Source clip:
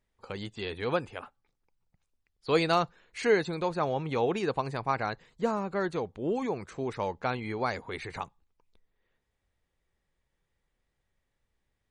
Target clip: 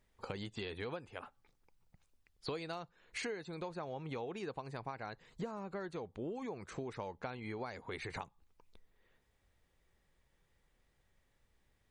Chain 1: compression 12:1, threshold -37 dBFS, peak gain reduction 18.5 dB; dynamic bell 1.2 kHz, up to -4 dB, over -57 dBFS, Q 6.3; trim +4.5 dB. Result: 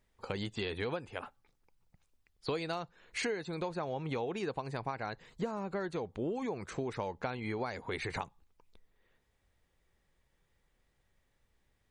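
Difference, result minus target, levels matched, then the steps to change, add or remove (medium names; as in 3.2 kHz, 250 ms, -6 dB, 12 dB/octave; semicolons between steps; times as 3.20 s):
compression: peak gain reduction -6 dB
change: compression 12:1, threshold -43.5 dBFS, peak gain reduction 24.5 dB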